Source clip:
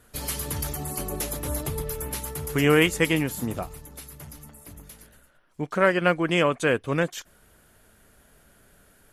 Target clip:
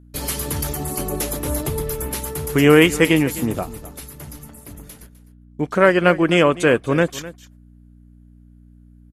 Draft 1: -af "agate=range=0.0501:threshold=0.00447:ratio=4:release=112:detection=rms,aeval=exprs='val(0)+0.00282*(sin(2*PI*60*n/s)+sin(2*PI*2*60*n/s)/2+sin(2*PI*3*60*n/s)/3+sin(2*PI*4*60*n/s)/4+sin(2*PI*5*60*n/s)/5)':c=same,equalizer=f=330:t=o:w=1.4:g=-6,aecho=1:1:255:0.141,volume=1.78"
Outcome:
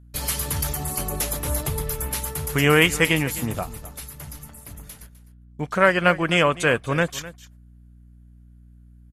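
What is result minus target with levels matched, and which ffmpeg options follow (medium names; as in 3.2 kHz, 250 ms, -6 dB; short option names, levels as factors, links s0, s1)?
250 Hz band -4.5 dB
-af "agate=range=0.0501:threshold=0.00447:ratio=4:release=112:detection=rms,aeval=exprs='val(0)+0.00282*(sin(2*PI*60*n/s)+sin(2*PI*2*60*n/s)/2+sin(2*PI*3*60*n/s)/3+sin(2*PI*4*60*n/s)/4+sin(2*PI*5*60*n/s)/5)':c=same,equalizer=f=330:t=o:w=1.4:g=3.5,aecho=1:1:255:0.141,volume=1.78"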